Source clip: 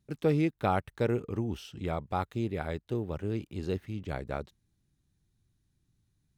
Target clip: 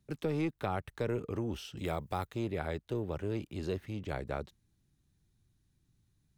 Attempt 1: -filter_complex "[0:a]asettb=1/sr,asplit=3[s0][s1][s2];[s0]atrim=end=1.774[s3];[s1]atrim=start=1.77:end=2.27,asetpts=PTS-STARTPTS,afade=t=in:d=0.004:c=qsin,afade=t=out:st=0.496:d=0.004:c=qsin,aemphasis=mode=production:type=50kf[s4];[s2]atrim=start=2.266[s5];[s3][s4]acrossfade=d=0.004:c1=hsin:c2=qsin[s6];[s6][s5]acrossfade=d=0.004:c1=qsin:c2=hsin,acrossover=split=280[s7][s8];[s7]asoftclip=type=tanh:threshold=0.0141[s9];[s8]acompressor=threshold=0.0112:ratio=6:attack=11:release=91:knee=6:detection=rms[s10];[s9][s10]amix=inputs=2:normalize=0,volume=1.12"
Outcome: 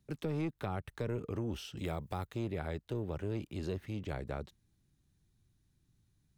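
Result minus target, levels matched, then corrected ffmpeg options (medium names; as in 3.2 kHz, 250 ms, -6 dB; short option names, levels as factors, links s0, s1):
compression: peak gain reduction +5.5 dB
-filter_complex "[0:a]asettb=1/sr,asplit=3[s0][s1][s2];[s0]atrim=end=1.774[s3];[s1]atrim=start=1.77:end=2.27,asetpts=PTS-STARTPTS,afade=t=in:d=0.004:c=qsin,afade=t=out:st=0.496:d=0.004:c=qsin,aemphasis=mode=production:type=50kf[s4];[s2]atrim=start=2.266[s5];[s3][s4]acrossfade=d=0.004:c1=hsin:c2=qsin[s6];[s6][s5]acrossfade=d=0.004:c1=qsin:c2=hsin,acrossover=split=280[s7][s8];[s7]asoftclip=type=tanh:threshold=0.0141[s9];[s8]acompressor=threshold=0.0237:ratio=6:attack=11:release=91:knee=6:detection=rms[s10];[s9][s10]amix=inputs=2:normalize=0,volume=1.12"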